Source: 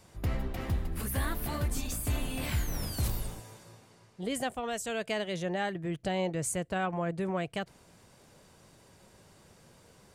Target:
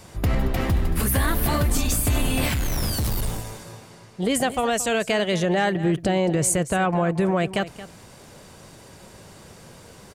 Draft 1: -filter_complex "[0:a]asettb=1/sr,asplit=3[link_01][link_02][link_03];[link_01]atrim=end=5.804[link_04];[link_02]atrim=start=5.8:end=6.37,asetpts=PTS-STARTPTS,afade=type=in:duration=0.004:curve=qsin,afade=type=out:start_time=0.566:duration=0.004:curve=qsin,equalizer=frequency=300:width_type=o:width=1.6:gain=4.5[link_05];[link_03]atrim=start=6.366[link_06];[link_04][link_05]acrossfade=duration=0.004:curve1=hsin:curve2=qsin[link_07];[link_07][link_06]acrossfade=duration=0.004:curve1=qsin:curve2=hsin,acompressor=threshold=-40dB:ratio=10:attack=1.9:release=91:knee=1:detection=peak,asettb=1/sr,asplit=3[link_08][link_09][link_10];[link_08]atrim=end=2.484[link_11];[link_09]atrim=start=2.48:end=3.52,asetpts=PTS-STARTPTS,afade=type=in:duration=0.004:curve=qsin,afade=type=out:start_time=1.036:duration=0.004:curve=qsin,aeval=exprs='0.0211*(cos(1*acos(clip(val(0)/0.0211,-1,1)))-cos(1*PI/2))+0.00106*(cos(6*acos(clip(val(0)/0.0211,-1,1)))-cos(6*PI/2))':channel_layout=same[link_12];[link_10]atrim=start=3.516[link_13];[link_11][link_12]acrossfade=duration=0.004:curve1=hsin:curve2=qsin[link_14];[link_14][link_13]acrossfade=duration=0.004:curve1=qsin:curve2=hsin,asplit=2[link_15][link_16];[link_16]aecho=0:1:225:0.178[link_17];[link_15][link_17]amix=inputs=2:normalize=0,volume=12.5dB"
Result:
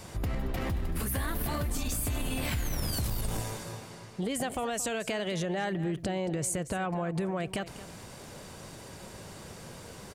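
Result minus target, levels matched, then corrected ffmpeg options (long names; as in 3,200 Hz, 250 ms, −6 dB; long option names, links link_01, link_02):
downward compressor: peak gain reduction +11 dB
-filter_complex "[0:a]asettb=1/sr,asplit=3[link_01][link_02][link_03];[link_01]atrim=end=5.804[link_04];[link_02]atrim=start=5.8:end=6.37,asetpts=PTS-STARTPTS,afade=type=in:duration=0.004:curve=qsin,afade=type=out:start_time=0.566:duration=0.004:curve=qsin,equalizer=frequency=300:width_type=o:width=1.6:gain=4.5[link_05];[link_03]atrim=start=6.366[link_06];[link_04][link_05]acrossfade=duration=0.004:curve1=hsin:curve2=qsin[link_07];[link_07][link_06]acrossfade=duration=0.004:curve1=qsin:curve2=hsin,acompressor=threshold=-28dB:ratio=10:attack=1.9:release=91:knee=1:detection=peak,asettb=1/sr,asplit=3[link_08][link_09][link_10];[link_08]atrim=end=2.484[link_11];[link_09]atrim=start=2.48:end=3.52,asetpts=PTS-STARTPTS,afade=type=in:duration=0.004:curve=qsin,afade=type=out:start_time=1.036:duration=0.004:curve=qsin,aeval=exprs='0.0211*(cos(1*acos(clip(val(0)/0.0211,-1,1)))-cos(1*PI/2))+0.00106*(cos(6*acos(clip(val(0)/0.0211,-1,1)))-cos(6*PI/2))':channel_layout=same[link_12];[link_10]atrim=start=3.516[link_13];[link_11][link_12]acrossfade=duration=0.004:curve1=hsin:curve2=qsin[link_14];[link_14][link_13]acrossfade=duration=0.004:curve1=qsin:curve2=hsin,asplit=2[link_15][link_16];[link_16]aecho=0:1:225:0.178[link_17];[link_15][link_17]amix=inputs=2:normalize=0,volume=12.5dB"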